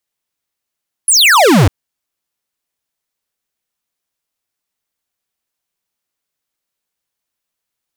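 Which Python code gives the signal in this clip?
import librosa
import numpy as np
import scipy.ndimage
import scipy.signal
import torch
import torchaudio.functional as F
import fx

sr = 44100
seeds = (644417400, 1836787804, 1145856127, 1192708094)

y = fx.laser_zap(sr, level_db=-7.5, start_hz=11000.0, end_hz=81.0, length_s=0.6, wave='square')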